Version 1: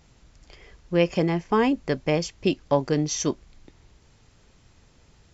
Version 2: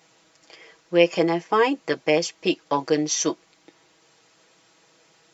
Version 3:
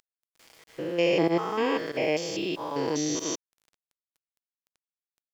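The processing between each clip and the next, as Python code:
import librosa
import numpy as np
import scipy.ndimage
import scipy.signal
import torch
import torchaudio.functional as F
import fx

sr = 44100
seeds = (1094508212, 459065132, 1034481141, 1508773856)

y1 = scipy.signal.sosfilt(scipy.signal.butter(2, 370.0, 'highpass', fs=sr, output='sos'), x)
y1 = y1 + 0.76 * np.pad(y1, (int(6.2 * sr / 1000.0), 0))[:len(y1)]
y1 = y1 * 10.0 ** (2.5 / 20.0)
y2 = fx.spec_steps(y1, sr, hold_ms=200)
y2 = fx.volume_shaper(y2, sr, bpm=94, per_beat=1, depth_db=-18, release_ms=83.0, shape='fast start')
y2 = np.where(np.abs(y2) >= 10.0 ** (-49.0 / 20.0), y2, 0.0)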